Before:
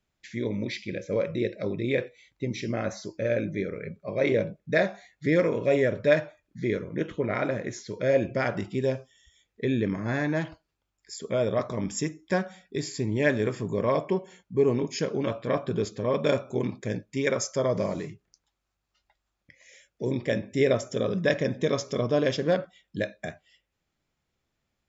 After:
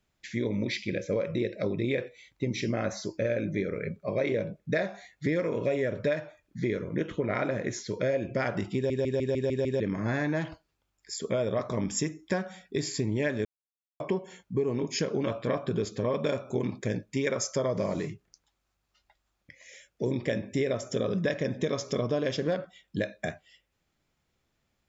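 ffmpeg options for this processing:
-filter_complex "[0:a]asplit=10[a][b][c][d][e][f][g][h][i][j];[a]atrim=end=8.902[k];[b]atrim=start=8.748:end=8.902[l];[c]atrim=start=8.748:end=8.902[m];[d]atrim=start=8.748:end=8.902[n];[e]atrim=start=8.748:end=8.902[o];[f]atrim=start=8.748:end=8.902[p];[g]atrim=start=8.748:end=8.902[q];[h]atrim=start=9.798:end=13.45,asetpts=PTS-STARTPTS,afade=t=out:st=3.648:d=0.004:c=hsin[r];[i]atrim=start=13.45:end=14,asetpts=PTS-STARTPTS,volume=0[s];[j]atrim=start=14,asetpts=PTS-STARTPTS,afade=t=in:d=0.004:c=hsin[t];[k][l]acrossfade=d=0.004:c1=hsin:c2=hsin[u];[u][m]acrossfade=d=0.004:c1=hsin:c2=hsin[v];[v][n]acrossfade=d=0.004:c1=hsin:c2=hsin[w];[w][o]acrossfade=d=0.004:c1=hsin:c2=hsin[x];[x][p]acrossfade=d=0.004:c1=hsin:c2=hsin[y];[y][q]acrossfade=d=0.004:c1=hsin:c2=hsin[z];[r][s][t]concat=n=3:v=0:a=1[aa];[z][aa]acrossfade=d=0.004:c1=hsin:c2=hsin,acompressor=threshold=-28dB:ratio=6,volume=3dB"

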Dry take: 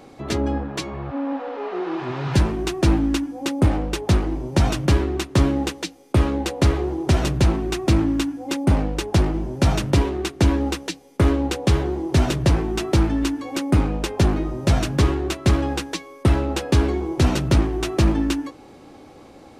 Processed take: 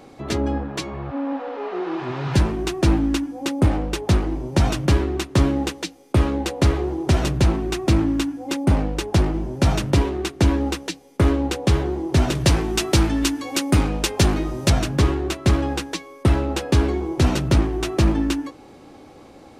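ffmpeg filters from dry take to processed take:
-filter_complex "[0:a]asettb=1/sr,asplit=3[a][b][c];[a]atrim=end=12.354[d];[b]atrim=start=12.35:end=14.7,asetpts=PTS-STARTPTS,afade=t=in:d=0.004:c=qsin,afade=t=out:st=2.346:d=0.004:c=qsin,highshelf=f=2.2k:g=9.5[e];[c]atrim=start=14.696[f];[d][e]acrossfade=d=0.004:c1=hsin:c2=qsin[g];[g][f]acrossfade=d=0.004:c1=qsin:c2=hsin"

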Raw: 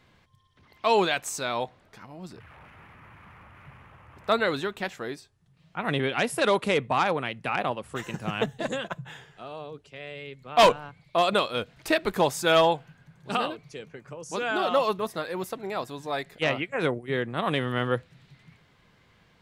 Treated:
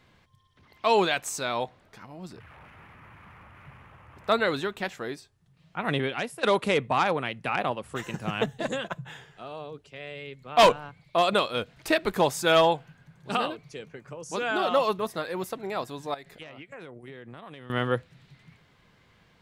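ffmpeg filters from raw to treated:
-filter_complex "[0:a]asettb=1/sr,asplit=3[a][b][c];[a]atrim=end=16.144[d];[b]atrim=start=16.14:end=17.7,asetpts=PTS-STARTPTS,afade=t=in:d=0.004:c=qsin,afade=t=out:st=1.556:d=0.004:c=qsin,acompressor=threshold=-39dB:ratio=16:attack=3.2:release=140:knee=1:detection=peak[e];[c]atrim=start=17.696[f];[d][e]acrossfade=d=0.004:c1=hsin:c2=qsin[g];[g][f]acrossfade=d=0.004:c1=qsin:c2=hsin,asplit=2[h][i];[h]atrim=end=6.43,asetpts=PTS-STARTPTS,afade=t=out:st=5.95:d=0.48:silence=0.149624[j];[i]atrim=start=6.43,asetpts=PTS-STARTPTS,afade=t=in:d=0.004:c=hsin:silence=0.149624[k];[j][k]concat=n=2:v=0:a=1"

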